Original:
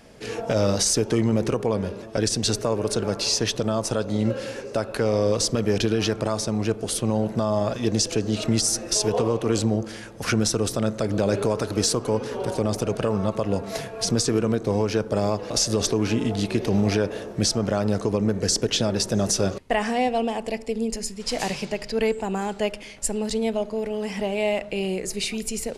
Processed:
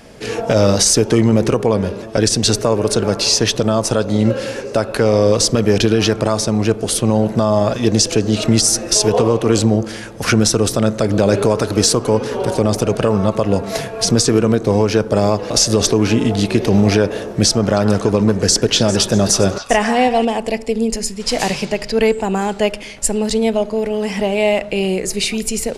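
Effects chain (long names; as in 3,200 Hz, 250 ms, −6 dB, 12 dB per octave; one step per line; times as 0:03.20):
0:17.50–0:20.25: echo through a band-pass that steps 133 ms, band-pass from 1,200 Hz, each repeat 1.4 octaves, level −4.5 dB
level +8.5 dB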